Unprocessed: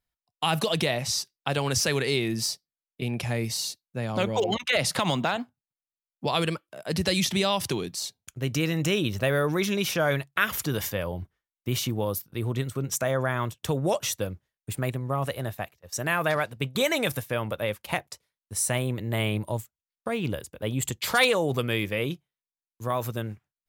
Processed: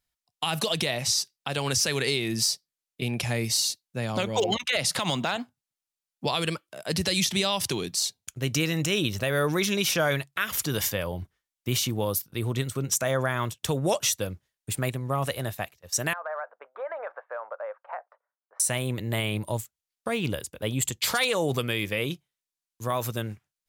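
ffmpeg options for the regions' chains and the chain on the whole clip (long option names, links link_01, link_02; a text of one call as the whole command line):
ffmpeg -i in.wav -filter_complex "[0:a]asettb=1/sr,asplit=3[link_01][link_02][link_03];[link_01]atrim=end=16.134[link_04];[link_02]atrim=start=16.13:end=18.6,asetpts=PTS-STARTPTS,afade=type=in:duration=0.004:curve=qsin,afade=type=out:start_time=2.466:duration=0.004:curve=qsin,asuperpass=centerf=920:order=8:qfactor=0.91,acompressor=threshold=-32dB:ratio=3:attack=3.2:release=140:knee=1:detection=peak[link_05];[link_03]atrim=start=18.596[link_06];[link_04][link_05]acrossfade=duration=0.004:curve1=hsin:curve2=qsin[link_07];[link_07][link_06]acrossfade=duration=0.004:curve1=qsin:curve2=hsin,equalizer=frequency=7000:width_type=o:width=2.8:gain=6.5,alimiter=limit=-13.5dB:level=0:latency=1:release=188" out.wav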